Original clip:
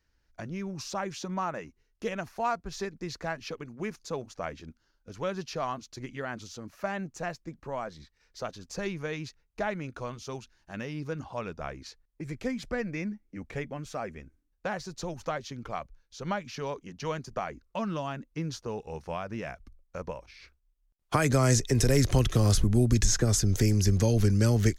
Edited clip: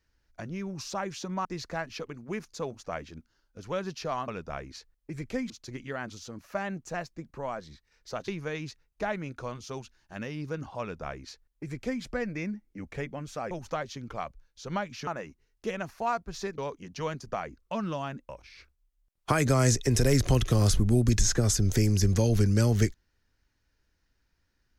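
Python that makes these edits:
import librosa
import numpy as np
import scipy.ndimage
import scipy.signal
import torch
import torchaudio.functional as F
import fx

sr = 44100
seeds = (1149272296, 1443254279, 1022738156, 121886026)

y = fx.edit(x, sr, fx.move(start_s=1.45, length_s=1.51, to_s=16.62),
    fx.cut(start_s=8.57, length_s=0.29),
    fx.duplicate(start_s=11.39, length_s=1.22, to_s=5.79),
    fx.cut(start_s=14.09, length_s=0.97),
    fx.cut(start_s=18.33, length_s=1.8), tone=tone)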